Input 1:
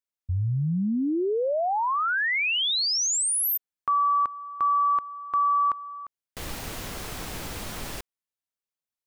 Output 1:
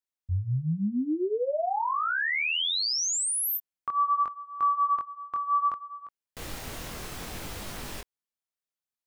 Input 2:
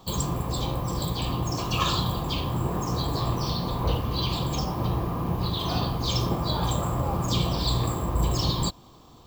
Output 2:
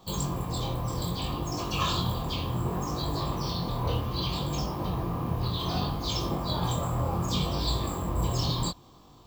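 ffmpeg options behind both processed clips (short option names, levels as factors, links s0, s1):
-af "flanger=delay=20:depth=4.9:speed=0.65"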